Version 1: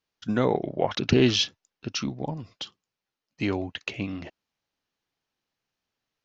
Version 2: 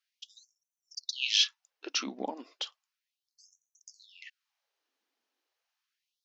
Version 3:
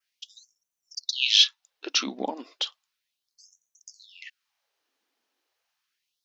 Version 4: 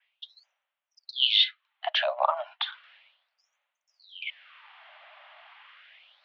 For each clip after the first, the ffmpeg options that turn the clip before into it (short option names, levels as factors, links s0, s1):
-filter_complex "[0:a]acrossover=split=570|1500[s0][s1][s2];[s0]acompressor=threshold=0.0251:ratio=6[s3];[s3][s1][s2]amix=inputs=3:normalize=0,afftfilt=real='re*gte(b*sr/1024,200*pow(5800/200,0.5+0.5*sin(2*PI*0.34*pts/sr)))':imag='im*gte(b*sr/1024,200*pow(5800/200,0.5+0.5*sin(2*PI*0.34*pts/sr)))':win_size=1024:overlap=0.75"
-filter_complex "[0:a]adynamicequalizer=threshold=0.00631:dfrequency=3700:dqfactor=2.8:tfrequency=3700:tqfactor=2.8:attack=5:release=100:ratio=0.375:range=3.5:mode=boostabove:tftype=bell,asplit=2[s0][s1];[s1]alimiter=limit=0.178:level=0:latency=1:release=379,volume=0.841[s2];[s0][s2]amix=inputs=2:normalize=0"
-af "areverse,acompressor=mode=upward:threshold=0.0178:ratio=2.5,areverse,highpass=f=200:t=q:w=0.5412,highpass=f=200:t=q:w=1.307,lowpass=f=2800:t=q:w=0.5176,lowpass=f=2800:t=q:w=0.7071,lowpass=f=2800:t=q:w=1.932,afreqshift=350,volume=2"